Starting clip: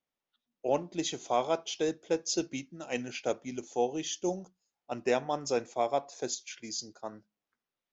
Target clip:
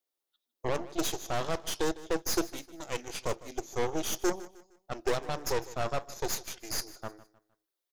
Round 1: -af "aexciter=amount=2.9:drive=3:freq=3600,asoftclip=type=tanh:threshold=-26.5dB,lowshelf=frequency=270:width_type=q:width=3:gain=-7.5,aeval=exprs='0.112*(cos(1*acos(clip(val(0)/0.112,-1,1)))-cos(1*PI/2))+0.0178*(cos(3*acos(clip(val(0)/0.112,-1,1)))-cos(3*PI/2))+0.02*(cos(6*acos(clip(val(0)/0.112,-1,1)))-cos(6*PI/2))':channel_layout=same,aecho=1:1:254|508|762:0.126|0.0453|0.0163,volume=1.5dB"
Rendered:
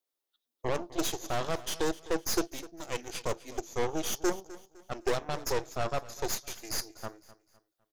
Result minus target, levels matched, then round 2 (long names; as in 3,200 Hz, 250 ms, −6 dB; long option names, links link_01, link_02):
echo 100 ms late
-af "aexciter=amount=2.9:drive=3:freq=3600,asoftclip=type=tanh:threshold=-26.5dB,lowshelf=frequency=270:width_type=q:width=3:gain=-7.5,aeval=exprs='0.112*(cos(1*acos(clip(val(0)/0.112,-1,1)))-cos(1*PI/2))+0.0178*(cos(3*acos(clip(val(0)/0.112,-1,1)))-cos(3*PI/2))+0.02*(cos(6*acos(clip(val(0)/0.112,-1,1)))-cos(6*PI/2))':channel_layout=same,aecho=1:1:154|308|462:0.126|0.0453|0.0163,volume=1.5dB"